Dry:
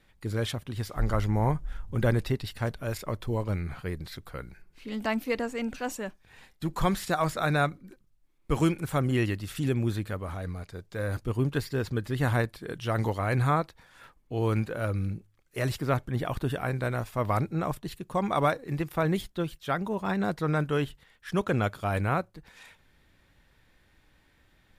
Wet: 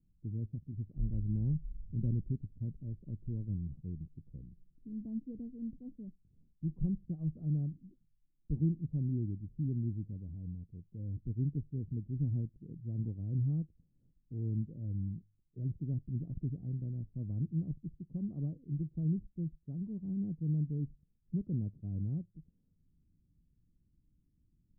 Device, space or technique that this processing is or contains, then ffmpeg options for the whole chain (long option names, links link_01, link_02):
the neighbour's flat through the wall: -af "lowpass=frequency=270:width=0.5412,lowpass=frequency=270:width=1.3066,equalizer=frequency=160:width_type=o:width=0.41:gain=5,volume=-7dB"